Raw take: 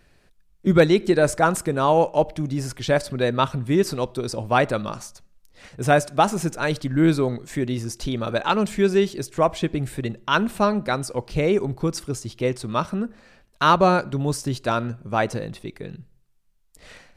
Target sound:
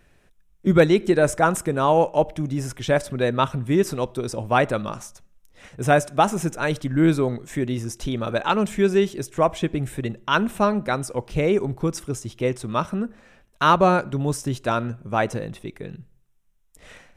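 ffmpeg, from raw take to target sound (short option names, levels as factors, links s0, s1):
-af "equalizer=f=4500:t=o:w=0.24:g=-11.5"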